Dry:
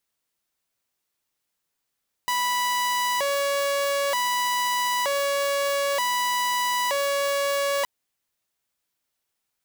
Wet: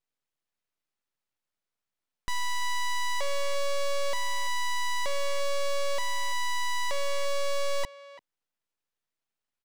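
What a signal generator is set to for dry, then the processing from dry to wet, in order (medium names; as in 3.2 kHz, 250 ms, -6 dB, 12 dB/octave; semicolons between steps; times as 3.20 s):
siren hi-lo 562–985 Hz 0.54 per s saw -19.5 dBFS 5.57 s
low-pass 1.7 kHz 6 dB/octave; full-wave rectifier; speakerphone echo 340 ms, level -15 dB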